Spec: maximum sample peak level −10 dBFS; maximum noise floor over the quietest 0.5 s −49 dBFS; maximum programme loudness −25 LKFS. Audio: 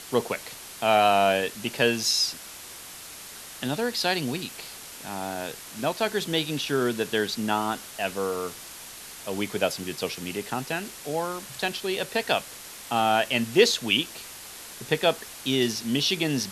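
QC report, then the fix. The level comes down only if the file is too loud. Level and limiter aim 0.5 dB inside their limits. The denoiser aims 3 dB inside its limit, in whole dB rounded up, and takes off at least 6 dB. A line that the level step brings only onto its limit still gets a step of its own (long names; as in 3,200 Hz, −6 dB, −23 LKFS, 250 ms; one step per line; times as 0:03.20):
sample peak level −5.0 dBFS: out of spec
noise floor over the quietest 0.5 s −42 dBFS: out of spec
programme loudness −26.0 LKFS: in spec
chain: broadband denoise 10 dB, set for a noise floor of −42 dBFS
brickwall limiter −10.5 dBFS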